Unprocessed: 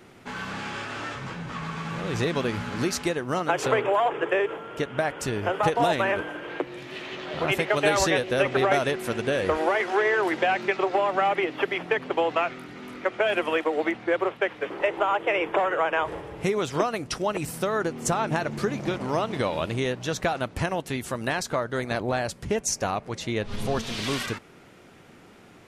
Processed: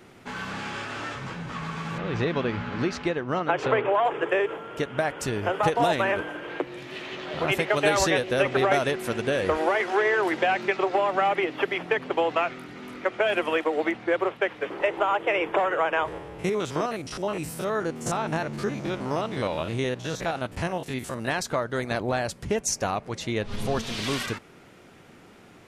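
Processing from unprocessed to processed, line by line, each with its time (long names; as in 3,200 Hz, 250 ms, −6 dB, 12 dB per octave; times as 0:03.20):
0:01.98–0:04.05: low-pass filter 3,400 Hz
0:16.08–0:21.28: spectrum averaged block by block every 50 ms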